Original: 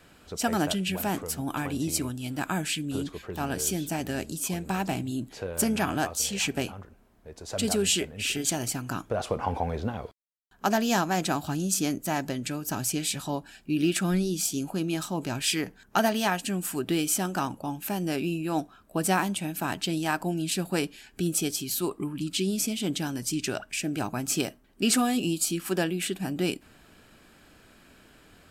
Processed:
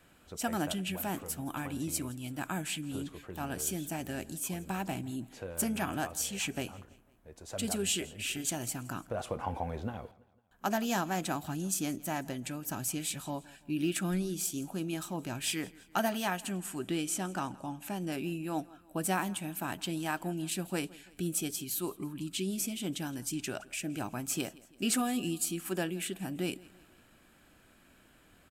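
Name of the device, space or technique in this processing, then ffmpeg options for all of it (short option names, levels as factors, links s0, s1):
exciter from parts: -filter_complex "[0:a]asettb=1/sr,asplit=3[s0][s1][s2];[s0]atrim=end=16.524[s3];[s1]atrim=start=16.52:end=18.12,asetpts=PTS-STARTPTS,afade=t=in:d=0.004:c=qsin,afade=t=out:st=1.596:d=0.004:c=qsin,lowpass=9200[s4];[s2]atrim=start=18.116[s5];[s3][s4]acrossfade=d=0.004:c1=hsin:c2=qsin[s6];[s6][s5]acrossfade=d=0.004:c1=qsin:c2=hsin,bandreject=f=430:w=12,aecho=1:1:167|334|501:0.0794|0.0389|0.0191,asplit=2[s7][s8];[s8]highpass=f=4500:w=0.5412,highpass=f=4500:w=1.3066,asoftclip=type=tanh:threshold=0.0891,volume=0.501[s9];[s7][s9]amix=inputs=2:normalize=0,volume=0.473"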